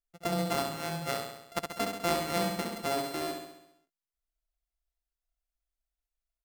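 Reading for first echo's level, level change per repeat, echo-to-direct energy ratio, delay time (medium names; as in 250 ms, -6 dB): -5.0 dB, -4.5 dB, -3.0 dB, 67 ms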